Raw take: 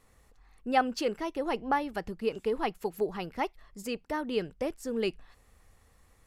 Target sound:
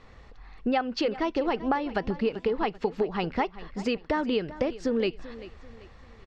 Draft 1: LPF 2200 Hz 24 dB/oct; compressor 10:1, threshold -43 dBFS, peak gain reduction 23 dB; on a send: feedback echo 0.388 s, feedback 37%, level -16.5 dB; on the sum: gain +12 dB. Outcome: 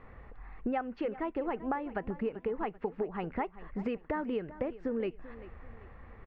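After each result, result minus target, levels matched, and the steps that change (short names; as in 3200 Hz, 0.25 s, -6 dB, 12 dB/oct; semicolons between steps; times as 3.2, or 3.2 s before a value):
4000 Hz band -12.0 dB; compressor: peak gain reduction +7 dB
change: LPF 4700 Hz 24 dB/oct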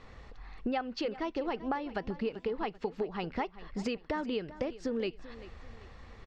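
compressor: peak gain reduction +7 dB
change: compressor 10:1, threshold -35 dBFS, peak gain reduction 16 dB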